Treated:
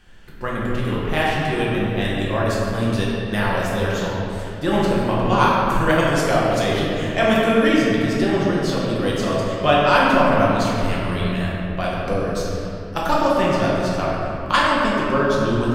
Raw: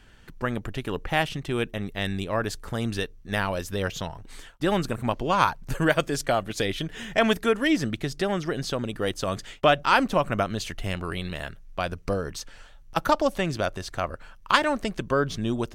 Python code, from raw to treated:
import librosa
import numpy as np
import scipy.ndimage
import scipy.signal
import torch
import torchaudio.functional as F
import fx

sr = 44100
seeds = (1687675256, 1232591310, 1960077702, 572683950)

y = fx.room_shoebox(x, sr, seeds[0], volume_m3=140.0, walls='hard', distance_m=0.89)
y = F.gain(torch.from_numpy(y), -1.0).numpy()